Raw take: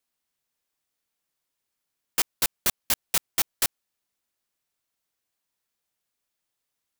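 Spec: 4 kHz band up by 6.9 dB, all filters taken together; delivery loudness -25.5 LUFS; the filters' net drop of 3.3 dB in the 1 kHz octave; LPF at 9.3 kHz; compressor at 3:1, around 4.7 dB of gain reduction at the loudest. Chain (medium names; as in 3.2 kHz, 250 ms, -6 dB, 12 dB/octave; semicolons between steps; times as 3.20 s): low-pass 9.3 kHz; peaking EQ 1 kHz -5 dB; peaking EQ 4 kHz +9 dB; compression 3:1, threshold -25 dBFS; trim +4.5 dB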